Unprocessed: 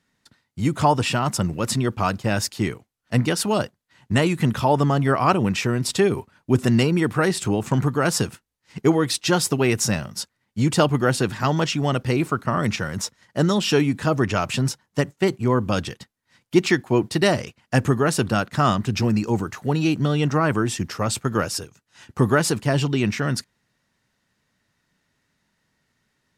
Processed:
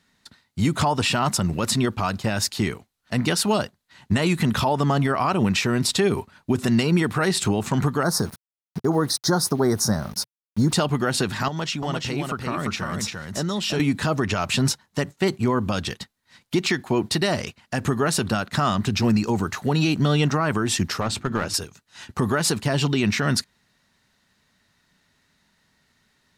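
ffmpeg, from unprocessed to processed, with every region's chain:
ffmpeg -i in.wav -filter_complex "[0:a]asettb=1/sr,asplit=3[link_01][link_02][link_03];[link_01]atrim=end=8.034[link_04];[link_02]atrim=start=8.03:end=10.73,asetpts=PTS-STARTPTS,afade=type=in:duration=0.004:curve=qsin,afade=type=out:start_time=2.696:duration=0.004:curve=qsin,asuperstop=centerf=2700:order=4:qfactor=0.8,aeval=exprs='val(0)*gte(abs(val(0)),0.00841)':channel_layout=same,equalizer=frequency=7500:width_type=o:width=0.21:gain=-14[link_05];[link_03]atrim=start=10.726[link_06];[link_04][link_05]acrossfade=duration=0.004:curve1=hsin:curve2=qsin[link_07];[link_07][link_06]acrossfade=duration=0.004:curve1=qsin:curve2=hsin,asettb=1/sr,asplit=3[link_08][link_09][link_10];[link_08]atrim=end=11.484[link_11];[link_09]atrim=start=11.48:end=13.8,asetpts=PTS-STARTPTS,afade=type=in:duration=0.004:curve=qsin,afade=type=out:start_time=2.316:duration=0.004:curve=qsin,acompressor=threshold=-36dB:ratio=2:attack=3.2:release=140:knee=1:detection=peak,aecho=1:1:345:0.668,atrim=end_sample=102312[link_12];[link_10]atrim=start=13.796[link_13];[link_11][link_12]acrossfade=duration=0.004:curve1=hsin:curve2=qsin[link_14];[link_14][link_13]acrossfade=duration=0.004:curve1=qsin:curve2=hsin,asettb=1/sr,asplit=3[link_15][link_16][link_17];[link_15]atrim=end=21.004[link_18];[link_16]atrim=start=21:end=21.54,asetpts=PTS-STARTPTS,afade=type=in:duration=0.004:curve=qsin,afade=type=out:start_time=0.536:duration=0.004:curve=qsin,aemphasis=mode=reproduction:type=50kf,bandreject=frequency=50:width_type=h:width=6,bandreject=frequency=100:width_type=h:width=6,bandreject=frequency=150:width_type=h:width=6,bandreject=frequency=200:width_type=h:width=6,bandreject=frequency=250:width_type=h:width=6,bandreject=frequency=300:width_type=h:width=6,bandreject=frequency=350:width_type=h:width=6,aeval=exprs='clip(val(0),-1,0.0631)':channel_layout=same[link_19];[link_17]atrim=start=21.536[link_20];[link_18][link_19]acrossfade=duration=0.004:curve1=hsin:curve2=qsin[link_21];[link_21][link_20]acrossfade=duration=0.004:curve1=qsin:curve2=hsin,equalizer=frequency=125:width_type=o:width=0.33:gain=-6,equalizer=frequency=315:width_type=o:width=0.33:gain=-4,equalizer=frequency=500:width_type=o:width=0.33:gain=-4,equalizer=frequency=4000:width_type=o:width=0.33:gain=5,alimiter=limit=-17dB:level=0:latency=1:release=150,volume=5.5dB" out.wav

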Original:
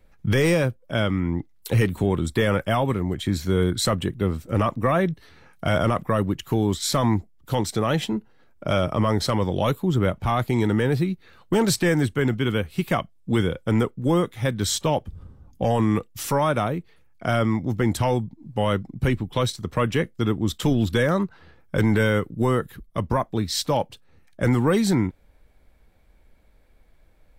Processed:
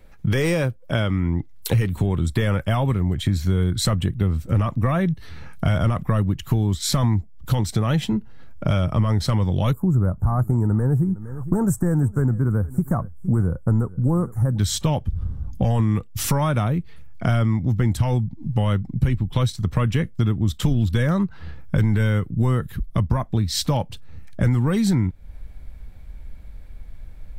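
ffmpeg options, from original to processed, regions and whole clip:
ffmpeg -i in.wav -filter_complex "[0:a]asettb=1/sr,asplit=3[link_01][link_02][link_03];[link_01]atrim=end=9.734[link_04];[link_02]atrim=start=9.73:end=14.58,asetpts=PTS-STARTPTS,afade=type=in:duration=0.004:curve=qsin,afade=type=out:start_time=4.846:duration=0.004:curve=qsin,asuperstop=centerf=3300:order=8:qfactor=0.56,aecho=1:1:461:0.0708,atrim=end_sample=213885[link_05];[link_03]atrim=start=14.576[link_06];[link_04][link_05]acrossfade=duration=0.004:curve1=hsin:curve2=qsin[link_07];[link_07][link_06]acrossfade=duration=0.004:curve1=qsin:curve2=hsin,asubboost=boost=4:cutoff=180,acompressor=threshold=-28dB:ratio=3,volume=7.5dB" out.wav

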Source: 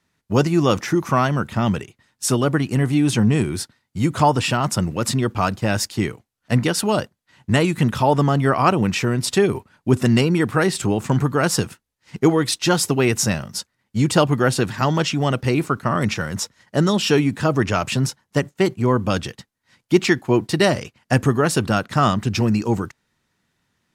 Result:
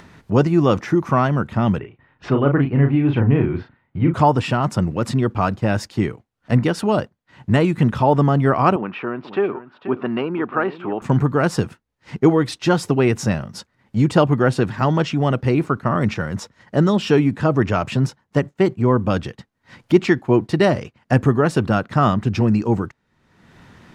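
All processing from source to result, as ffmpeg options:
ffmpeg -i in.wav -filter_complex "[0:a]asettb=1/sr,asplit=3[link_01][link_02][link_03];[link_01]atrim=end=1.794[link_04];[link_02]atrim=start=1.79:end=4.14,asetpts=PTS-STARTPTS,afade=type=in:duration=0.004:curve=qsin,afade=type=out:start_time=2.346:duration=0.004:curve=qsin,lowpass=frequency=2800:width=0.5412,lowpass=frequency=2800:width=1.3066,bandreject=frequency=210:width=6,asplit=2[link_05][link_06];[link_06]adelay=36,volume=-5.5dB[link_07];[link_05][link_07]amix=inputs=2:normalize=0,atrim=end_sample=103635[link_08];[link_03]atrim=start=4.136[link_09];[link_04][link_08]acrossfade=duration=0.004:curve1=hsin:curve2=qsin[link_10];[link_10][link_09]acrossfade=duration=0.004:curve1=qsin:curve2=hsin,asettb=1/sr,asplit=3[link_11][link_12][link_13];[link_11]atrim=end=8.764[link_14];[link_12]atrim=start=8.76:end=11.02,asetpts=PTS-STARTPTS,afade=type=in:duration=0.004:curve=qsin,afade=type=out:start_time=2.256:duration=0.004:curve=qsin,highpass=370,equalizer=frequency=490:width_type=q:width=4:gain=-5,equalizer=frequency=1200:width_type=q:width=4:gain=4,equalizer=frequency=2000:width_type=q:width=4:gain=-7,lowpass=frequency=2700:width=0.5412,lowpass=frequency=2700:width=1.3066,aecho=1:1:485:0.188,atrim=end_sample=99666[link_15];[link_13]atrim=start=11.016[link_16];[link_14][link_15]acrossfade=duration=0.004:curve1=hsin:curve2=qsin[link_17];[link_17][link_16]acrossfade=duration=0.004:curve1=qsin:curve2=hsin,lowpass=frequency=1500:poles=1,acompressor=mode=upward:threshold=-28dB:ratio=2.5,volume=2dB" out.wav

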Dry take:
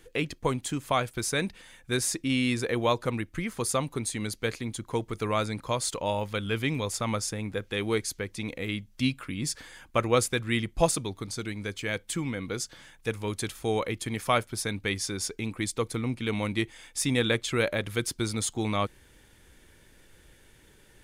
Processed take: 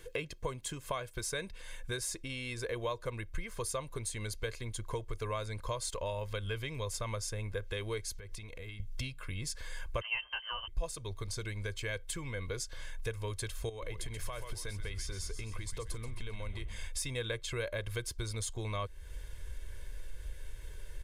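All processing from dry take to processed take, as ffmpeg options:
ffmpeg -i in.wav -filter_complex "[0:a]asettb=1/sr,asplit=3[link_01][link_02][link_03];[link_01]atrim=end=8.124[link_04];[link_02]atrim=start=8.12:end=8.8,asetpts=PTS-STARTPTS,afade=type=in:duration=0.004:curve=qsin,afade=type=out:start_time=0.676:duration=0.004:curve=qsin,bandreject=frequency=540:width=7,acompressor=threshold=-44dB:ratio=16:attack=3.2:release=140:knee=1:detection=peak[link_05];[link_03]atrim=start=8.796[link_06];[link_04][link_05]acrossfade=duration=0.004:curve1=hsin:curve2=qsin[link_07];[link_07][link_06]acrossfade=duration=0.004:curve1=qsin:curve2=hsin,asettb=1/sr,asplit=3[link_08][link_09][link_10];[link_08]atrim=end=10.014[link_11];[link_09]atrim=start=10.01:end=10.68,asetpts=PTS-STARTPTS,afade=type=in:duration=0.004:curve=qsin,afade=type=out:start_time=0.666:duration=0.004:curve=qsin,asplit=2[link_12][link_13];[link_13]adelay=13,volume=-4dB[link_14];[link_12][link_14]amix=inputs=2:normalize=0,atrim=end_sample=29547,lowpass=frequency=2700:width_type=q:width=0.5098,lowpass=frequency=2700:width_type=q:width=0.6013,lowpass=frequency=2700:width_type=q:width=0.9,lowpass=frequency=2700:width_type=q:width=2.563,afreqshift=-3200,acompressor=mode=upward:threshold=-32dB:ratio=2.5:attack=3.2:release=140:knee=2.83:detection=peak[link_15];[link_10]atrim=start=10.676[link_16];[link_11][link_15]acrossfade=duration=0.004:curve1=hsin:curve2=qsin[link_17];[link_17][link_16]acrossfade=duration=0.004:curve1=qsin:curve2=hsin,asettb=1/sr,asplit=3[link_18][link_19][link_20];[link_18]atrim=end=13.694[link_21];[link_19]atrim=start=13.69:end=16.88,asetpts=PTS-STARTPTS,afade=type=in:duration=0.004:curve=qsin,afade=type=out:start_time=3.186:duration=0.004:curve=qsin,acompressor=threshold=-38dB:ratio=4:attack=3.2:release=140:knee=1:detection=peak,asplit=6[link_22][link_23][link_24][link_25][link_26][link_27];[link_23]adelay=130,afreqshift=-130,volume=-10.5dB[link_28];[link_24]adelay=260,afreqshift=-260,volume=-16.9dB[link_29];[link_25]adelay=390,afreqshift=-390,volume=-23.3dB[link_30];[link_26]adelay=520,afreqshift=-520,volume=-29.6dB[link_31];[link_27]adelay=650,afreqshift=-650,volume=-36dB[link_32];[link_22][link_28][link_29][link_30][link_31][link_32]amix=inputs=6:normalize=0,atrim=end_sample=140679[link_33];[link_20]atrim=start=16.876[link_34];[link_21][link_33]acrossfade=duration=0.004:curve1=hsin:curve2=qsin[link_35];[link_35][link_34]acrossfade=duration=0.004:curve1=qsin:curve2=hsin,asubboost=boost=7.5:cutoff=61,acompressor=threshold=-39dB:ratio=4,aecho=1:1:1.9:0.6,volume=1dB" out.wav

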